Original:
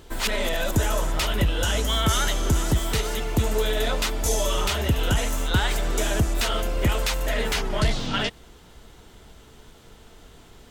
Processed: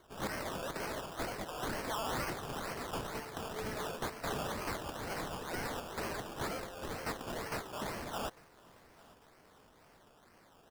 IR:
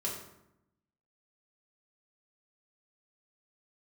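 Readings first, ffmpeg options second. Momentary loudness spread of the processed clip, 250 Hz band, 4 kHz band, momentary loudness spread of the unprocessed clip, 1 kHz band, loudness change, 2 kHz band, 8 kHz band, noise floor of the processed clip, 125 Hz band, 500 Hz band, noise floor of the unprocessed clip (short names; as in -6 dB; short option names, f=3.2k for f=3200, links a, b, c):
4 LU, -13.5 dB, -18.0 dB, 3 LU, -9.0 dB, -15.0 dB, -13.0 dB, -17.5 dB, -63 dBFS, -20.5 dB, -12.5 dB, -50 dBFS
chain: -filter_complex "[0:a]highpass=690,equalizer=f=970:w=0.64:g=-9.5,acrusher=samples=17:mix=1:aa=0.000001:lfo=1:lforange=10.2:lforate=2.1,asoftclip=type=tanh:threshold=-26.5dB,asplit=2[a][b];[b]aecho=0:1:849|1698|2547:0.0668|0.0301|0.0135[c];[a][c]amix=inputs=2:normalize=0,volume=-4.5dB"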